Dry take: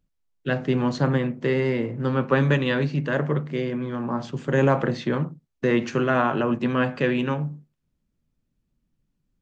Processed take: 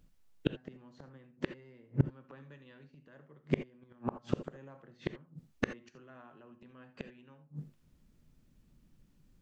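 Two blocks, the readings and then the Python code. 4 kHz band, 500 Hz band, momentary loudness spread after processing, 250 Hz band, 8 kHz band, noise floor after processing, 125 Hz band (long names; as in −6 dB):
−16.5 dB, −19.5 dB, 20 LU, −17.0 dB, can't be measured, −67 dBFS, −15.5 dB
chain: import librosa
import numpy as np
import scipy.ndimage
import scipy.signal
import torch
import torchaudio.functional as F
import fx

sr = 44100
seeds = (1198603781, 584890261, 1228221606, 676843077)

y = fx.gate_flip(x, sr, shuts_db=-21.0, range_db=-42)
y = fx.rev_gated(y, sr, seeds[0], gate_ms=100, shape='rising', drr_db=11.0)
y = y * librosa.db_to_amplitude(8.5)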